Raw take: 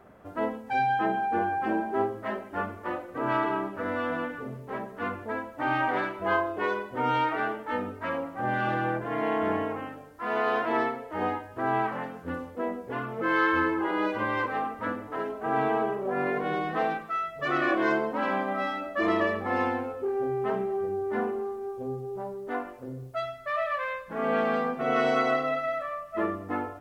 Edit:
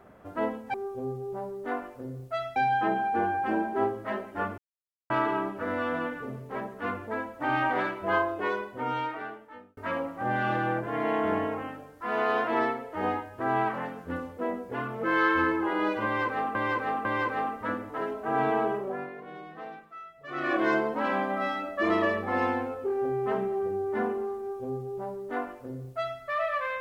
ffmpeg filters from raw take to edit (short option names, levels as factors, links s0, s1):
-filter_complex "[0:a]asplit=10[s0][s1][s2][s3][s4][s5][s6][s7][s8][s9];[s0]atrim=end=0.742[s10];[s1]atrim=start=21.568:end=23.392[s11];[s2]atrim=start=0.738:end=2.76,asetpts=PTS-STARTPTS,afade=t=out:st=2.018:d=0.004:c=hsin[s12];[s3]atrim=start=2.76:end=3.28,asetpts=PTS-STARTPTS,volume=0[s13];[s4]atrim=start=3.28:end=7.95,asetpts=PTS-STARTPTS,afade=t=in:d=0.004:c=hsin,afade=t=out:st=3.22:d=1.45[s14];[s5]atrim=start=7.95:end=14.732,asetpts=PTS-STARTPTS,afade=t=in:d=0.004:c=hsin[s15];[s6]atrim=start=14.228:end=14.732[s16];[s7]atrim=start=14.228:end=16.28,asetpts=PTS-STARTPTS,afade=t=out:st=1.722:d=0.33:silence=0.199526[s17];[s8]atrim=start=16.28:end=17.45,asetpts=PTS-STARTPTS,volume=0.2[s18];[s9]atrim=start=17.45,asetpts=PTS-STARTPTS,afade=t=in:d=0.33:silence=0.199526[s19];[s10][s11]acrossfade=d=0.004:c1=hsin:c2=hsin[s20];[s12][s13][s14][s15]concat=n=4:v=0:a=1[s21];[s20][s21]acrossfade=d=0.004:c1=hsin:c2=hsin[s22];[s22][s16]acrossfade=d=0.004:c1=hsin:c2=hsin[s23];[s17][s18][s19]concat=n=3:v=0:a=1[s24];[s23][s24]acrossfade=d=0.004:c1=hsin:c2=hsin"